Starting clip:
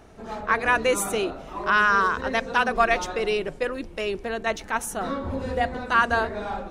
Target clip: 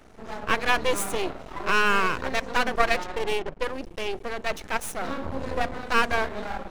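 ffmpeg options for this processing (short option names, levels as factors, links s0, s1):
-filter_complex "[0:a]aeval=exprs='max(val(0),0)':c=same,asettb=1/sr,asplit=3[s0][s1][s2];[s0]atrim=end=2.944[s3];[s1]atrim=start=2.94:end=3.6,asetpts=PTS-STARTPTS,afade=t=in:d=0.004:c=qsin,afade=t=out:st=0.656:d=0.004:c=qsin,adynamicsmooth=sensitivity=8:basefreq=1800[s4];[s2]atrim=start=3.596[s5];[s3][s4]acrossfade=d=0.004:c1=hsin:c2=qsin[s6];[s6][s5]acrossfade=d=0.004:c1=qsin:c2=hsin,volume=1.26"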